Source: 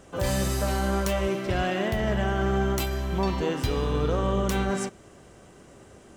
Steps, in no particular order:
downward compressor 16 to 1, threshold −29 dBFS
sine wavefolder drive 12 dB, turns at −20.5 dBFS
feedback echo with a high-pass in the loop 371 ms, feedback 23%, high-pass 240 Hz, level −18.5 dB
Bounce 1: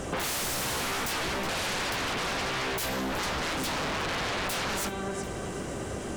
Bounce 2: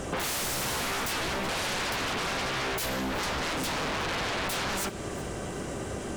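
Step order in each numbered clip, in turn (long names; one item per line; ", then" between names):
feedback echo with a high-pass in the loop, then sine wavefolder, then downward compressor
sine wavefolder, then downward compressor, then feedback echo with a high-pass in the loop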